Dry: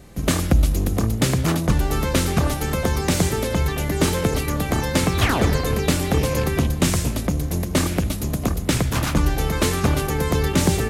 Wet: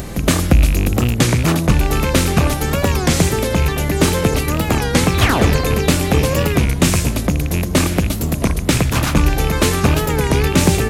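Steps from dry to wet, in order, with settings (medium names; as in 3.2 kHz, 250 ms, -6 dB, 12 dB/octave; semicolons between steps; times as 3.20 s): rattle on loud lows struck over -18 dBFS, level -19 dBFS; upward compressor, threshold -22 dBFS; warped record 33 1/3 rpm, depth 160 cents; trim +5 dB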